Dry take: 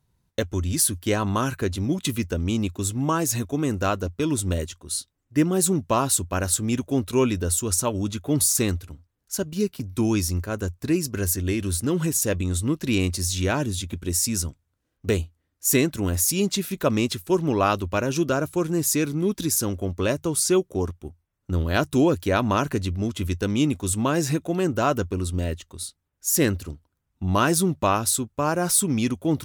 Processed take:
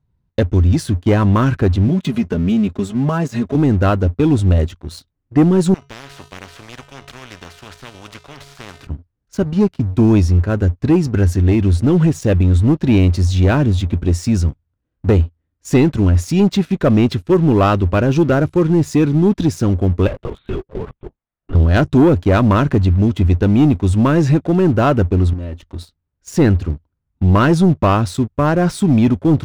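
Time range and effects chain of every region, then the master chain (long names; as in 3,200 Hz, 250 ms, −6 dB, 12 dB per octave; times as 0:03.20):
0:01.88–0:03.55: high-pass filter 82 Hz + comb filter 4.8 ms, depth 88% + downward compressor 2 to 1, threshold −29 dBFS
0:05.74–0:08.87: tuned comb filter 140 Hz, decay 0.64 s, harmonics odd, mix 80% + every bin compressed towards the loudest bin 10 to 1
0:20.07–0:21.55: high-pass filter 400 Hz + linear-prediction vocoder at 8 kHz whisper + downward compressor 5 to 1, threshold −32 dBFS
0:25.33–0:25.78: comb filter 3.4 ms, depth 49% + downward compressor 16 to 1, threshold −35 dBFS
whole clip: Bessel low-pass filter 2,600 Hz, order 2; low-shelf EQ 270 Hz +9 dB; leveller curve on the samples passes 2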